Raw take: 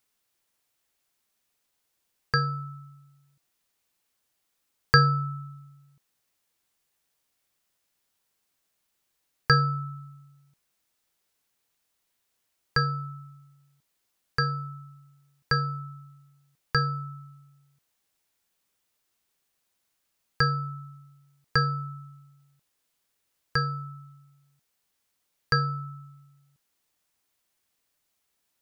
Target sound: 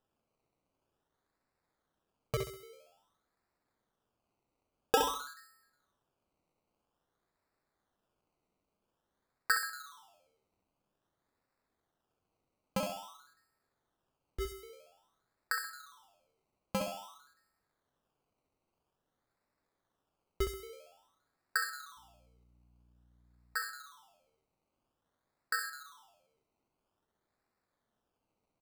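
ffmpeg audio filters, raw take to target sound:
-filter_complex "[0:a]highpass=f=690:w=0.5412,highpass=f=690:w=1.3066,acrusher=samples=20:mix=1:aa=0.000001:lfo=1:lforange=12:lforate=0.5,asettb=1/sr,asplit=3[a][b][c];[a]atrim=end=21.974[d];[b]atrim=start=21.97:end=23.57,asetpts=PTS-STARTPTS,afade=t=in:d=0.004:c=qsin,afade=t=out:st=1.596:d=0.004:c=qsin,aeval=exprs='val(0)+0.000891*(sin(2*PI*60*n/s)+sin(2*PI*2*60*n/s)/2+sin(2*PI*3*60*n/s)/3+sin(2*PI*4*60*n/s)/4+sin(2*PI*5*60*n/s)/5)':c=same[e];[c]atrim=start=23.566[f];[d][e]acrossfade=d=0.004:c1=hsin:c2=qsin[g];[g][f]acrossfade=d=0.004:c1=qsin:c2=hsin,aecho=1:1:66|132|198|264:0.447|0.147|0.0486|0.0161,volume=-8.5dB"

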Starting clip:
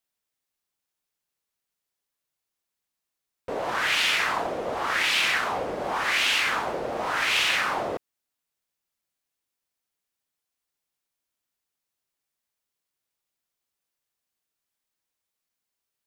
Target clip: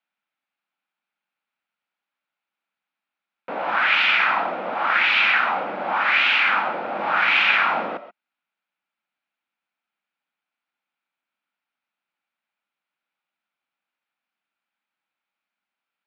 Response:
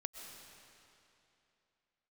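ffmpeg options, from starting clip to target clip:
-filter_complex "[0:a]asettb=1/sr,asplit=3[a][b][c];[a]atrim=end=6.984[d];[b]atrim=start=6.98:end=7.89,asetpts=PTS-STARTPTS,afade=t=in:d=0.004:c=qsin,afade=t=out:st=0.906:d=0.004:c=qsin,afreqshift=-130[e];[c]atrim=start=7.886[f];[d][e]acrossfade=d=0.004:c1=hsin:c2=qsin[g];[g][f]acrossfade=d=0.004:c1=qsin:c2=hsin,highpass=f=180:w=0.5412,highpass=f=180:w=1.3066,equalizer=f=200:t=q:w=4:g=4,equalizer=f=420:t=q:w=4:g=-9,equalizer=f=830:t=q:w=4:g=6,equalizer=f=1.4k:t=q:w=4:g=9,equalizer=f=2.4k:t=q:w=4:g=7,lowpass=f=3.6k:w=0.5412,lowpass=f=3.6k:w=1.3066[h];[1:a]atrim=start_sample=2205,atrim=end_sample=6174[i];[h][i]afir=irnorm=-1:irlink=0,volume=4.5dB"

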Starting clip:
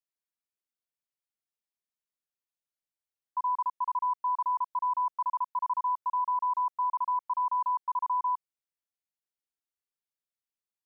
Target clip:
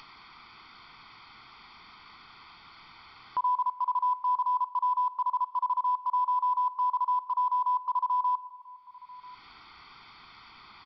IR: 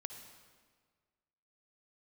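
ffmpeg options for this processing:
-filter_complex "[0:a]equalizer=f=1.2k:w=0.82:g=9,aecho=1:1:0.9:0.9,acompressor=mode=upward:threshold=-18dB:ratio=2.5,alimiter=limit=-23dB:level=0:latency=1:release=199,acrusher=bits=8:mode=log:mix=0:aa=0.000001,asplit=2[a][b];[b]adelay=991.3,volume=-19dB,highshelf=f=4k:g=-22.3[c];[a][c]amix=inputs=2:normalize=0,asplit=2[d][e];[1:a]atrim=start_sample=2205[f];[e][f]afir=irnorm=-1:irlink=0,volume=-6.5dB[g];[d][g]amix=inputs=2:normalize=0,aresample=11025,aresample=44100,volume=-1.5dB"

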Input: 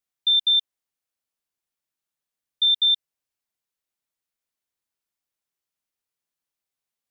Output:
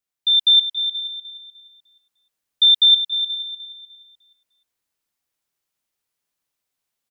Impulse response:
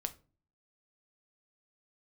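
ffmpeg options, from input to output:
-filter_complex "[0:a]asplit=2[a][b];[b]aecho=0:1:478:0.15[c];[a][c]amix=inputs=2:normalize=0,dynaudnorm=f=250:g=3:m=6dB,asplit=2[d][e];[e]aecho=0:1:302|604|906|1208:0.316|0.101|0.0324|0.0104[f];[d][f]amix=inputs=2:normalize=0"

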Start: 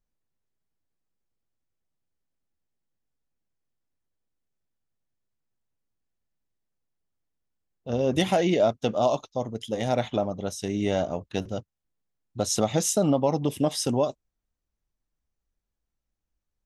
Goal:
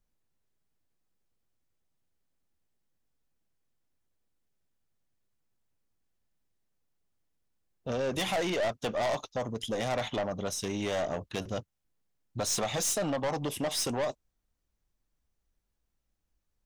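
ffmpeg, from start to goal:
-filter_complex "[0:a]acrossover=split=540|3500[a][b][c];[a]acompressor=threshold=-33dB:ratio=6[d];[d][b][c]amix=inputs=3:normalize=0,aeval=exprs='(tanh(31.6*val(0)+0.2)-tanh(0.2))/31.6':c=same,volume=3.5dB"

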